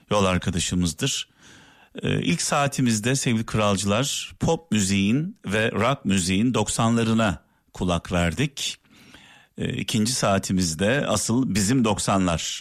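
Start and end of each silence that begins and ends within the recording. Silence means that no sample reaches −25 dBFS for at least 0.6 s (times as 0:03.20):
0:01.21–0:01.98
0:08.72–0:09.58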